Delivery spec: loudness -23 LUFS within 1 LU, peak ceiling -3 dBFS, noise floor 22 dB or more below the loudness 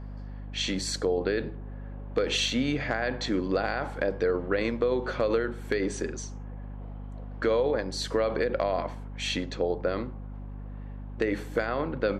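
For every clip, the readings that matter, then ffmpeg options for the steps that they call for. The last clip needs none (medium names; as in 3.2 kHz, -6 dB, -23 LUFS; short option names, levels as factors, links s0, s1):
hum 50 Hz; highest harmonic 250 Hz; hum level -36 dBFS; loudness -29.0 LUFS; peak level -13.5 dBFS; loudness target -23.0 LUFS
-> -af "bandreject=f=50:t=h:w=6,bandreject=f=100:t=h:w=6,bandreject=f=150:t=h:w=6,bandreject=f=200:t=h:w=6,bandreject=f=250:t=h:w=6"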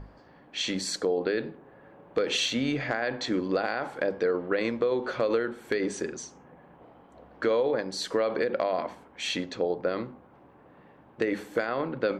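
hum not found; loudness -29.0 LUFS; peak level -14.0 dBFS; loudness target -23.0 LUFS
-> -af "volume=2"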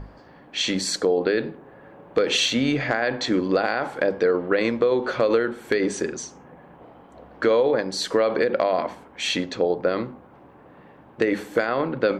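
loudness -23.0 LUFS; peak level -8.0 dBFS; noise floor -49 dBFS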